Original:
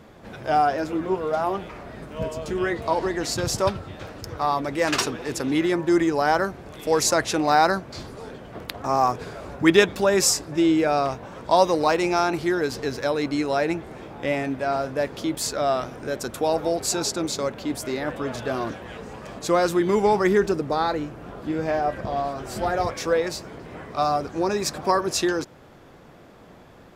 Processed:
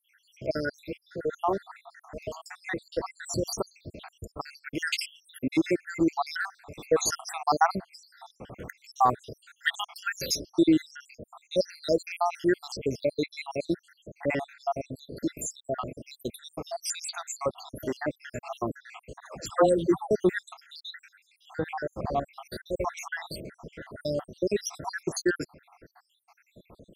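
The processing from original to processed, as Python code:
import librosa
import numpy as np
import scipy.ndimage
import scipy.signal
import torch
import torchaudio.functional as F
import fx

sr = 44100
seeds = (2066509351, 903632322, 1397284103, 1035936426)

y = fx.spec_dropout(x, sr, seeds[0], share_pct=80)
y = fx.dispersion(y, sr, late='lows', ms=137.0, hz=660.0, at=(19.2, 20.11))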